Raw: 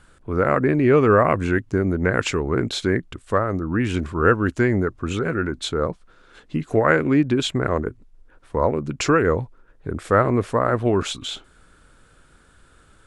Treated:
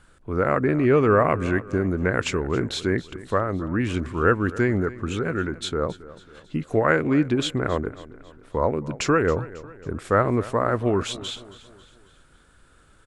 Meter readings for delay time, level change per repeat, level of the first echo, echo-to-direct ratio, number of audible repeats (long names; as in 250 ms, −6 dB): 273 ms, −6.5 dB, −18.0 dB, −17.0 dB, 3